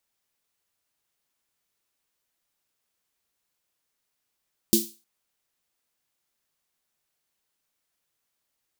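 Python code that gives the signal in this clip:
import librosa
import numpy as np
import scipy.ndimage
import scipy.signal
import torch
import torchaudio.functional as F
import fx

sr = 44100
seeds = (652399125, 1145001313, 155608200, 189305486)

y = fx.drum_snare(sr, seeds[0], length_s=0.31, hz=220.0, second_hz=340.0, noise_db=-1.0, noise_from_hz=3700.0, decay_s=0.25, noise_decay_s=0.33)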